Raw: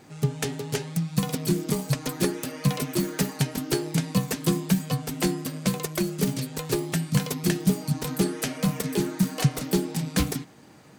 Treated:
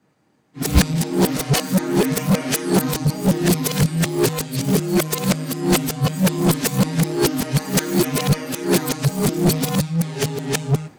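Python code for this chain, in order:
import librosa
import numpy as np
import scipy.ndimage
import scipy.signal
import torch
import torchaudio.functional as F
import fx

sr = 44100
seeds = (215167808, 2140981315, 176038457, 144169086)

p1 = np.flip(x).copy()
p2 = fx.cheby_harmonics(p1, sr, harmonics=(5,), levels_db=(-7,), full_scale_db=-8.5)
p3 = 10.0 ** (-18.0 / 20.0) * (np.abs((p2 / 10.0 ** (-18.0 / 20.0) + 3.0) % 4.0 - 2.0) - 1.0)
p4 = p2 + (p3 * 10.0 ** (-11.5 / 20.0))
p5 = fx.band_widen(p4, sr, depth_pct=100)
y = p5 * 10.0 ** (-1.0 / 20.0)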